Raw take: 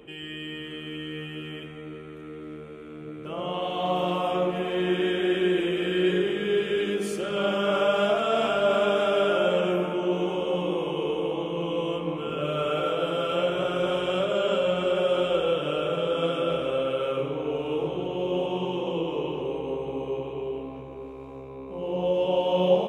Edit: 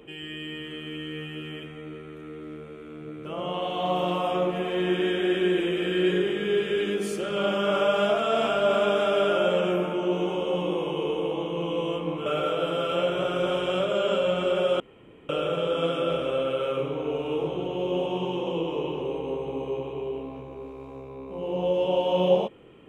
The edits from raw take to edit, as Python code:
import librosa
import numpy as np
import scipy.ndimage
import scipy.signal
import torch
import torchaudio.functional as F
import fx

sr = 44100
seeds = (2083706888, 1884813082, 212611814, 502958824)

y = fx.edit(x, sr, fx.cut(start_s=12.26, length_s=0.4),
    fx.room_tone_fill(start_s=15.2, length_s=0.49), tone=tone)